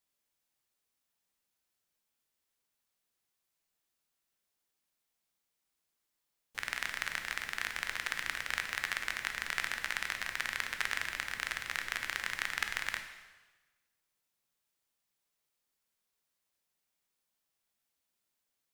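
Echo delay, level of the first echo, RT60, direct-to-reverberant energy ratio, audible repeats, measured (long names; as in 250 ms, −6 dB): no echo audible, no echo audible, 1.2 s, 6.0 dB, no echo audible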